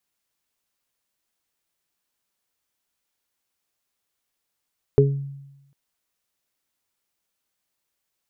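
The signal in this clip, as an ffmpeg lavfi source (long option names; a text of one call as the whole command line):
ffmpeg -f lavfi -i "aevalsrc='0.211*pow(10,-3*t/0.99)*sin(2*PI*139*t)+0.0841*pow(10,-3*t/0.34)*sin(2*PI*278*t)+0.376*pow(10,-3*t/0.25)*sin(2*PI*417*t)':duration=0.75:sample_rate=44100" out.wav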